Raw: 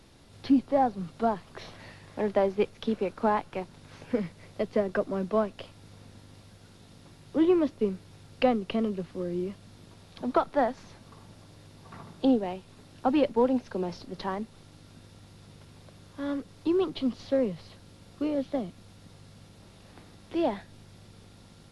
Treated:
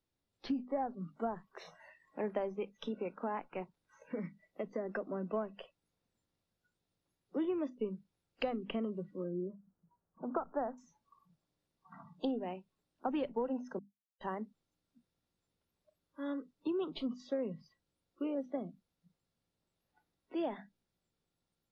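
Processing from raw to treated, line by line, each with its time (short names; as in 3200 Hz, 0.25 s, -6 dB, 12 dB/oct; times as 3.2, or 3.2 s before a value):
2.57–5.3 compressor 3:1, threshold -26 dBFS
9.24–10.78 steep low-pass 1600 Hz
13.79–14.21 mute
whole clip: notches 50/100/150/200/250 Hz; spectral noise reduction 25 dB; compressor 6:1, threshold -25 dBFS; gain -6.5 dB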